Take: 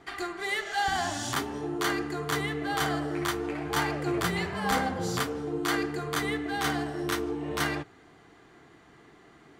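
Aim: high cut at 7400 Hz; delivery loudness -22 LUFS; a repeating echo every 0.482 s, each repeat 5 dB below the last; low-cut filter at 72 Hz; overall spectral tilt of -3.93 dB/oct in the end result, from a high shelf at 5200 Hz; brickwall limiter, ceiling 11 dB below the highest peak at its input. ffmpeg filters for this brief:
-af "highpass=72,lowpass=7.4k,highshelf=f=5.2k:g=-7.5,alimiter=level_in=0.5dB:limit=-24dB:level=0:latency=1,volume=-0.5dB,aecho=1:1:482|964|1446|1928|2410|2892|3374:0.562|0.315|0.176|0.0988|0.0553|0.031|0.0173,volume=10.5dB"

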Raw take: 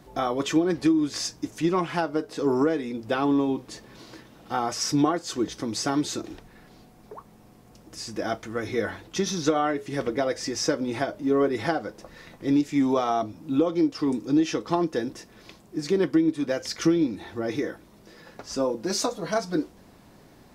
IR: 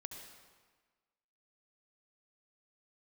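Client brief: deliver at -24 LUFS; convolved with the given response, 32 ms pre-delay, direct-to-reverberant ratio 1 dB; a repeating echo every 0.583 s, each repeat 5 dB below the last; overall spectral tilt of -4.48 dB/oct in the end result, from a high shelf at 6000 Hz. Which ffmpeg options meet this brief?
-filter_complex "[0:a]highshelf=f=6k:g=3,aecho=1:1:583|1166|1749|2332|2915|3498|4081:0.562|0.315|0.176|0.0988|0.0553|0.031|0.0173,asplit=2[a][b];[1:a]atrim=start_sample=2205,adelay=32[c];[b][c]afir=irnorm=-1:irlink=0,volume=2.5dB[d];[a][d]amix=inputs=2:normalize=0,volume=-1.5dB"

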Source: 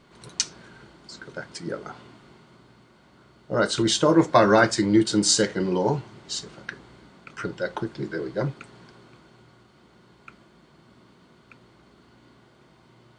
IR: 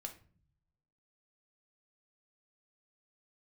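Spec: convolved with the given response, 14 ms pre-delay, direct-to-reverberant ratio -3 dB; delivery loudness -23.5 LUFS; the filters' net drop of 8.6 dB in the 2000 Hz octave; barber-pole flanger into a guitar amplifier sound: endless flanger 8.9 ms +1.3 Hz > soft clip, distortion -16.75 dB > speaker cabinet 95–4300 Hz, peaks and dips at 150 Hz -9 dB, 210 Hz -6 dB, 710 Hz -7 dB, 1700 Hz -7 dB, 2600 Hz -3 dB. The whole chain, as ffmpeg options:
-filter_complex "[0:a]equalizer=f=2k:t=o:g=-6.5,asplit=2[a][b];[1:a]atrim=start_sample=2205,adelay=14[c];[b][c]afir=irnorm=-1:irlink=0,volume=6.5dB[d];[a][d]amix=inputs=2:normalize=0,asplit=2[e][f];[f]adelay=8.9,afreqshift=1.3[g];[e][g]amix=inputs=2:normalize=1,asoftclip=threshold=-11dB,highpass=95,equalizer=f=150:t=q:w=4:g=-9,equalizer=f=210:t=q:w=4:g=-6,equalizer=f=710:t=q:w=4:g=-7,equalizer=f=1.7k:t=q:w=4:g=-7,equalizer=f=2.6k:t=q:w=4:g=-3,lowpass=f=4.3k:w=0.5412,lowpass=f=4.3k:w=1.3066,volume=3dB"

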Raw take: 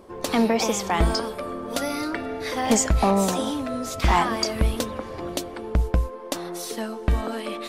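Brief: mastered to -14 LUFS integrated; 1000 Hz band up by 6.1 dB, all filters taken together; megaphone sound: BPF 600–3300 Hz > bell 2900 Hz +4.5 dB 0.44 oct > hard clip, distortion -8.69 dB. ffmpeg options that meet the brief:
-af "highpass=600,lowpass=3.3k,equalizer=f=1k:t=o:g=8.5,equalizer=f=2.9k:t=o:w=0.44:g=4.5,asoftclip=type=hard:threshold=-17dB,volume=12.5dB"

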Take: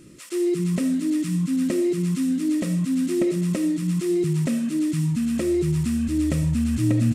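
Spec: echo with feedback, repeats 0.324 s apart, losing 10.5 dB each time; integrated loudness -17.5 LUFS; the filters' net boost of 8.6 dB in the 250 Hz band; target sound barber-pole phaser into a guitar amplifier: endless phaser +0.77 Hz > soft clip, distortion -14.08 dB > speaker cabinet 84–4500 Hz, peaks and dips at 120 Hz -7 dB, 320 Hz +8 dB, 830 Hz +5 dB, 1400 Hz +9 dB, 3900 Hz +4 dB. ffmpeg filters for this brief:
-filter_complex "[0:a]equalizer=f=250:t=o:g=6,aecho=1:1:324|648|972:0.299|0.0896|0.0269,asplit=2[a][b];[b]afreqshift=0.77[c];[a][c]amix=inputs=2:normalize=1,asoftclip=threshold=-18dB,highpass=84,equalizer=f=120:t=q:w=4:g=-7,equalizer=f=320:t=q:w=4:g=8,equalizer=f=830:t=q:w=4:g=5,equalizer=f=1.4k:t=q:w=4:g=9,equalizer=f=3.9k:t=q:w=4:g=4,lowpass=f=4.5k:w=0.5412,lowpass=f=4.5k:w=1.3066,volume=3dB"

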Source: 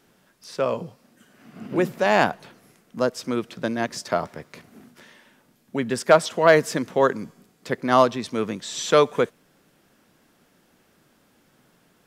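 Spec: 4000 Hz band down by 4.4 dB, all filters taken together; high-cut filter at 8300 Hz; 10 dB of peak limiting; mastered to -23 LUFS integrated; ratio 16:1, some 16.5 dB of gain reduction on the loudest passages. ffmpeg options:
-af "lowpass=8.3k,equalizer=f=4k:t=o:g=-5.5,acompressor=threshold=-26dB:ratio=16,volume=13dB,alimiter=limit=-9.5dB:level=0:latency=1"

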